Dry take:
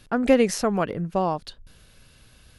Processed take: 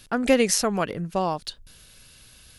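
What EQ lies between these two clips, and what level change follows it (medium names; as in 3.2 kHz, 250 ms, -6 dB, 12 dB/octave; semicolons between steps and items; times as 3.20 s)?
treble shelf 2.5 kHz +11 dB; -2.0 dB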